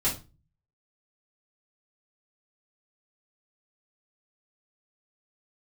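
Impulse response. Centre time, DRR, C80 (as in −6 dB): 22 ms, −9.0 dB, 17.0 dB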